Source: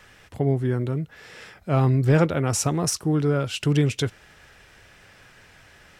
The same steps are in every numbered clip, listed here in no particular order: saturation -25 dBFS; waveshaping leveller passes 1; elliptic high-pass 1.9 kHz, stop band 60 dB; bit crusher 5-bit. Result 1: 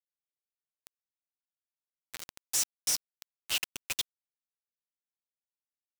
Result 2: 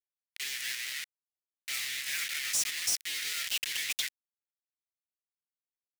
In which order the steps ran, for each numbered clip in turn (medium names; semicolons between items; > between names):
waveshaping leveller > saturation > elliptic high-pass > bit crusher; bit crusher > waveshaping leveller > elliptic high-pass > saturation